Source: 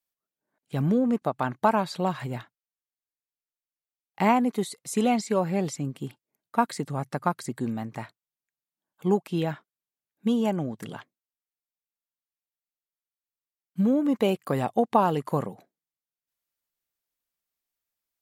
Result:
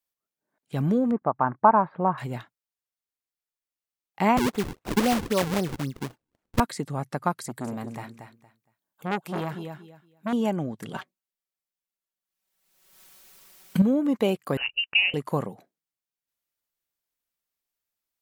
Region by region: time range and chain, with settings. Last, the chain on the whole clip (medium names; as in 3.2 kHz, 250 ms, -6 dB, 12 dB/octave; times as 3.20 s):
1.11–2.18 s: inverse Chebyshev low-pass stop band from 7 kHz, stop band 70 dB + dynamic bell 1 kHz, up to +8 dB, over -37 dBFS, Q 1.9
4.37–6.60 s: treble shelf 9.5 kHz +11.5 dB + decimation with a swept rate 41×, swing 160% 3.8 Hz
7.41–10.33 s: treble shelf 10 kHz +7.5 dB + feedback delay 232 ms, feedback 21%, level -9 dB + transformer saturation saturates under 1.5 kHz
10.94–13.82 s: comb 5.3 ms, depth 89% + waveshaping leveller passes 1 + swell ahead of each attack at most 49 dB/s
14.57–15.14 s: steep high-pass 550 Hz 72 dB/octave + frequency inversion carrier 3.5 kHz
whole clip: none